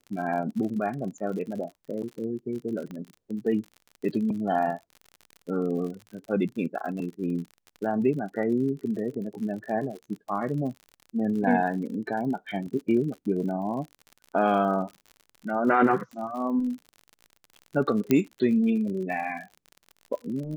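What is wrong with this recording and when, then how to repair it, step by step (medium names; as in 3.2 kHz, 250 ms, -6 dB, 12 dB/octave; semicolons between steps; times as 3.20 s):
crackle 54 per s -36 dBFS
2.91 s: pop -27 dBFS
18.11 s: pop -9 dBFS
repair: de-click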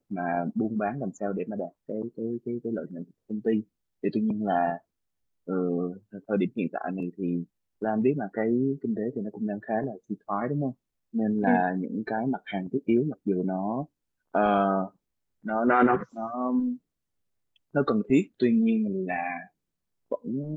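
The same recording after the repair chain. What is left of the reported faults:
2.91 s: pop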